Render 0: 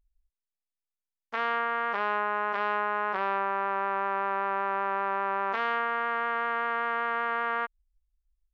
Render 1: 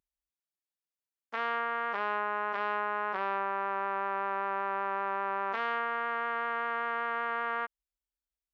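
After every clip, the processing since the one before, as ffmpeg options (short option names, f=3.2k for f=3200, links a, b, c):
-af "highpass=140,volume=-3.5dB"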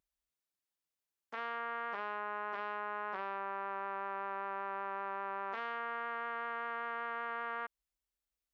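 -af "alimiter=level_in=6dB:limit=-24dB:level=0:latency=1:release=19,volume=-6dB,volume=1dB"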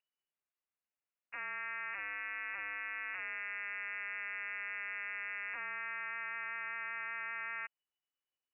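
-af "lowpass=f=2.6k:t=q:w=0.5098,lowpass=f=2.6k:t=q:w=0.6013,lowpass=f=2.6k:t=q:w=0.9,lowpass=f=2.6k:t=q:w=2.563,afreqshift=-3000,volume=-1.5dB"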